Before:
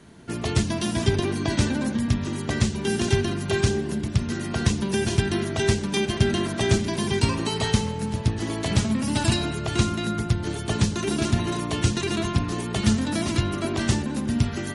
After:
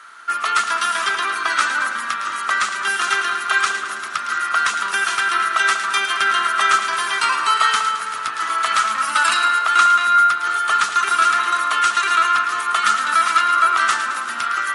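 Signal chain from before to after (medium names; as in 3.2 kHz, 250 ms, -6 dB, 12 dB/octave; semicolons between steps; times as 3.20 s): resonant high-pass 1.3 kHz, resonance Q 14; two-band feedback delay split 1.7 kHz, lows 193 ms, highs 109 ms, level -9 dB; dynamic bell 5.4 kHz, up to -4 dB, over -41 dBFS, Q 1.2; trim +6.5 dB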